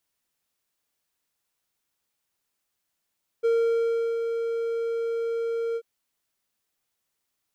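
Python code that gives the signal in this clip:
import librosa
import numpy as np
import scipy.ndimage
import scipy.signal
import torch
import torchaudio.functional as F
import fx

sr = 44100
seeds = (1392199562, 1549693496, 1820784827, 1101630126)

y = fx.adsr_tone(sr, wave='triangle', hz=461.0, attack_ms=22.0, decay_ms=723.0, sustain_db=-6.5, held_s=2.33, release_ms=57.0, level_db=-16.5)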